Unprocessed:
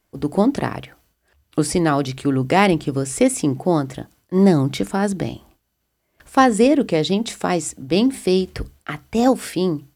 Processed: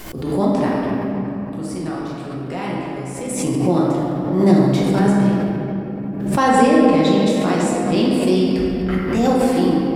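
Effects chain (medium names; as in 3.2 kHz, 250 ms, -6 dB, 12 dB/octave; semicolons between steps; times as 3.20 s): 0.78–3.28 s: compression 1.5:1, threshold -45 dBFS, peak gain reduction 12.5 dB; reverberation RT60 3.5 s, pre-delay 6 ms, DRR -6 dB; swell ahead of each attack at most 49 dB/s; trim -5.5 dB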